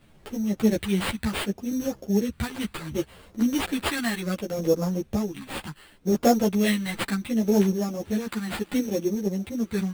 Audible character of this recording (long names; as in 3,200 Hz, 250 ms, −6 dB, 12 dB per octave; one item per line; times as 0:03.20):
sample-and-hold tremolo
phaser sweep stages 2, 0.68 Hz, lowest notch 510–2,100 Hz
aliases and images of a low sample rate 6,000 Hz, jitter 0%
a shimmering, thickened sound